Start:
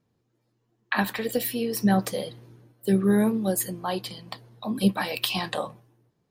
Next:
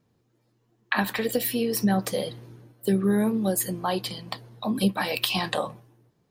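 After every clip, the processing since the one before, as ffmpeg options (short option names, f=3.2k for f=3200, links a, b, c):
-af "acompressor=threshold=-27dB:ratio=2,volume=4dB"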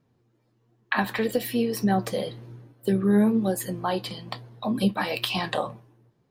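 -af "highshelf=f=4.8k:g=-8.5,flanger=delay=7.1:depth=2.8:regen=69:speed=1.1:shape=triangular,volume=5dB"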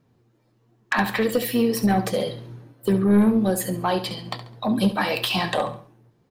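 -af "aeval=exprs='0.447*(cos(1*acos(clip(val(0)/0.447,-1,1)))-cos(1*PI/2))+0.0891*(cos(5*acos(clip(val(0)/0.447,-1,1)))-cos(5*PI/2))':c=same,aecho=1:1:69|138|207:0.251|0.0829|0.0274,volume=-1.5dB"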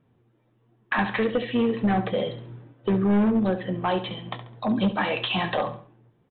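-af "volume=16dB,asoftclip=hard,volume=-16dB,aresample=8000,aresample=44100,volume=-1.5dB"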